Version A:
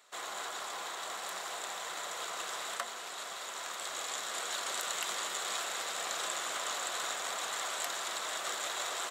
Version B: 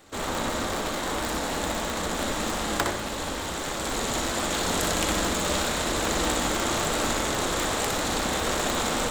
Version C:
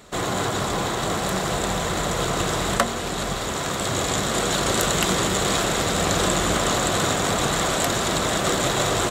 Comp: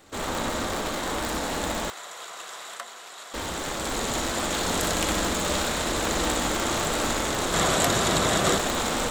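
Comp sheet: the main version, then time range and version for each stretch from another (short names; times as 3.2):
B
1.9–3.34 from A
7.54–8.58 from C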